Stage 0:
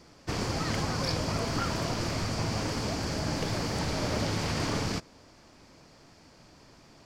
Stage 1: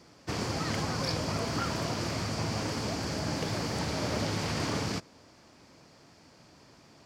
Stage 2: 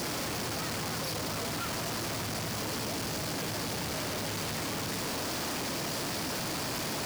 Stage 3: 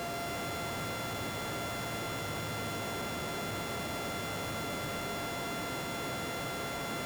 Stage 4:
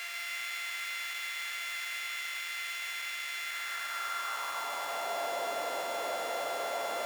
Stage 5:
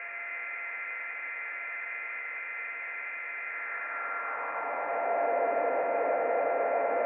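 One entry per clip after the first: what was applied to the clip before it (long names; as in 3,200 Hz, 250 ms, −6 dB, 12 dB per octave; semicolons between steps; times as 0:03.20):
high-pass filter 75 Hz; level −1 dB
sign of each sample alone; low-shelf EQ 81 Hz −6.5 dB
samples sorted by size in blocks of 64 samples; echo with a time of its own for lows and highs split 1,700 Hz, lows 366 ms, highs 137 ms, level −5.5 dB; level −3 dB
high-pass filter sweep 2,100 Hz → 610 Hz, 0:03.39–0:05.35
Chebyshev low-pass with heavy ripple 2,500 Hz, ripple 6 dB; hollow resonant body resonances 280/470 Hz, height 9 dB, ringing for 45 ms; level +6.5 dB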